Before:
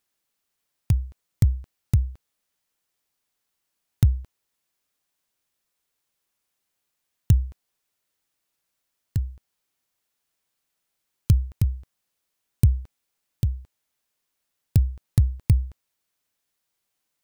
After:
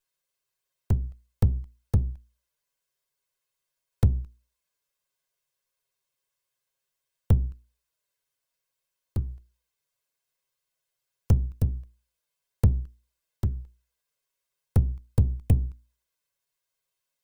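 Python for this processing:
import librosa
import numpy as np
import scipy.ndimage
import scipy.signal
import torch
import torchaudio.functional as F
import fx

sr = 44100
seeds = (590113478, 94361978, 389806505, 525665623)

y = fx.lower_of_two(x, sr, delay_ms=1.9)
y = fx.env_flanger(y, sr, rest_ms=7.4, full_db=-18.0)
y = fx.hum_notches(y, sr, base_hz=60, count=7)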